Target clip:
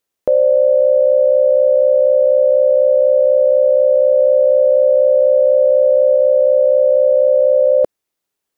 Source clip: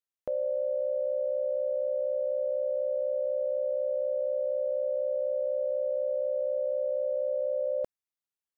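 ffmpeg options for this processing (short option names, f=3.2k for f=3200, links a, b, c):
-filter_complex "[0:a]asplit=3[a][b][c];[a]afade=t=out:st=4.18:d=0.02[d];[b]acontrast=28,afade=t=in:st=4.18:d=0.02,afade=t=out:st=6.16:d=0.02[e];[c]afade=t=in:st=6.16:d=0.02[f];[d][e][f]amix=inputs=3:normalize=0,equalizer=f=400:w=0.86:g=7.5,alimiter=level_in=18.5dB:limit=-1dB:release=50:level=0:latency=1,volume=-4.5dB"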